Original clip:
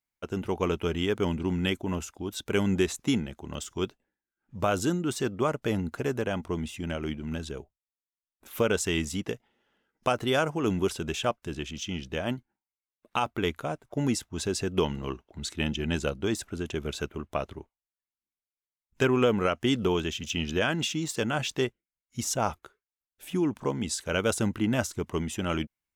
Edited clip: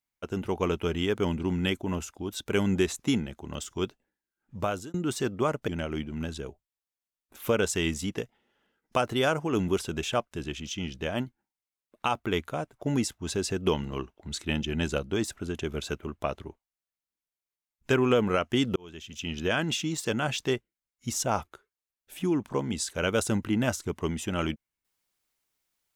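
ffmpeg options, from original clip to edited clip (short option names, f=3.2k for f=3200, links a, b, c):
-filter_complex "[0:a]asplit=4[a][b][c][d];[a]atrim=end=4.94,asetpts=PTS-STARTPTS,afade=t=out:st=4.56:d=0.38[e];[b]atrim=start=4.94:end=5.682,asetpts=PTS-STARTPTS,afade=t=in:d=0.004:c=hsin[f];[c]atrim=start=6.788:end=19.87,asetpts=PTS-STARTPTS,afade=t=out:st=13.078:d=0.004:c=hsin[g];[d]atrim=start=19.87,asetpts=PTS-STARTPTS,afade=t=in:d=0.82[h];[e][f]concat=n=2:v=0:a=1[i];[g][h]concat=n=2:v=0:a=1[j];[i][j]acrossfade=d=0.004:c1=hsin:c2=hsin"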